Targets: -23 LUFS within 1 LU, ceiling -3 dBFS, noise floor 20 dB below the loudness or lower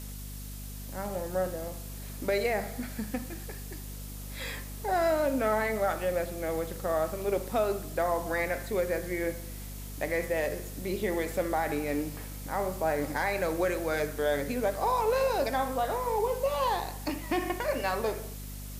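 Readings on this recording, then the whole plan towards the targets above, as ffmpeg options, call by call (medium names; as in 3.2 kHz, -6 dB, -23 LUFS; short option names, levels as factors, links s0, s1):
hum 50 Hz; highest harmonic 250 Hz; hum level -39 dBFS; noise floor -41 dBFS; noise floor target -51 dBFS; loudness -31.0 LUFS; peak level -15.0 dBFS; loudness target -23.0 LUFS
-> -af "bandreject=f=50:t=h:w=4,bandreject=f=100:t=h:w=4,bandreject=f=150:t=h:w=4,bandreject=f=200:t=h:w=4,bandreject=f=250:t=h:w=4"
-af "afftdn=nr=10:nf=-41"
-af "volume=2.51"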